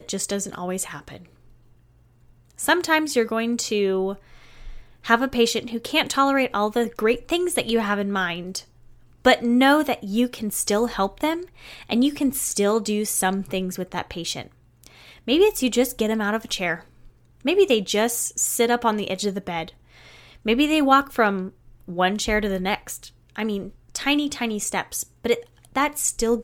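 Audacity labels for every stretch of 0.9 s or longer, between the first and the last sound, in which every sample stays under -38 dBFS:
1.250000	2.500000	silence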